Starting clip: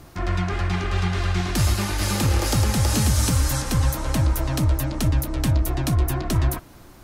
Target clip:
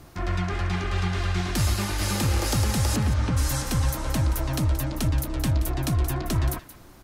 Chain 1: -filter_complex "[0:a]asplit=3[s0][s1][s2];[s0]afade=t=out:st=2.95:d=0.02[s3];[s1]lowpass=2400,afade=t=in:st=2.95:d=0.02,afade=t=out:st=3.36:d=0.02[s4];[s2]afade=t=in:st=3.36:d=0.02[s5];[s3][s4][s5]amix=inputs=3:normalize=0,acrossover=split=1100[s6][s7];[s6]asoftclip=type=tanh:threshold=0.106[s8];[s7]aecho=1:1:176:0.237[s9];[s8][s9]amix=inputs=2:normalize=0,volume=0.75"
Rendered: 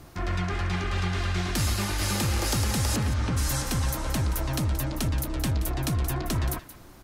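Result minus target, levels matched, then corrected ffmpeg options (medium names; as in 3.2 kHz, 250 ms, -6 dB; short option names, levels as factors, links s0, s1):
saturation: distortion +13 dB
-filter_complex "[0:a]asplit=3[s0][s1][s2];[s0]afade=t=out:st=2.95:d=0.02[s3];[s1]lowpass=2400,afade=t=in:st=2.95:d=0.02,afade=t=out:st=3.36:d=0.02[s4];[s2]afade=t=in:st=3.36:d=0.02[s5];[s3][s4][s5]amix=inputs=3:normalize=0,acrossover=split=1100[s6][s7];[s6]asoftclip=type=tanh:threshold=0.299[s8];[s7]aecho=1:1:176:0.237[s9];[s8][s9]amix=inputs=2:normalize=0,volume=0.75"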